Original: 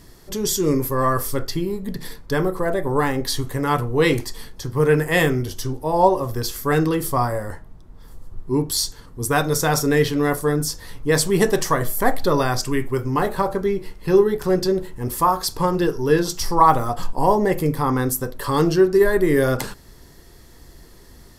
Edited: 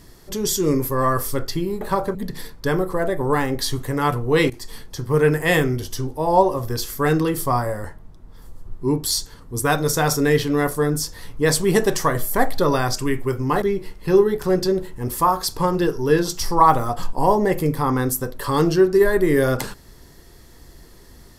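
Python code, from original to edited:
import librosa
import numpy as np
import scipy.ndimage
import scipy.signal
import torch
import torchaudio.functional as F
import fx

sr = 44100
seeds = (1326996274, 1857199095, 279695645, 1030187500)

y = fx.edit(x, sr, fx.fade_in_from(start_s=4.16, length_s=0.32, curve='qsin', floor_db=-18.0),
    fx.move(start_s=13.28, length_s=0.34, to_s=1.81), tone=tone)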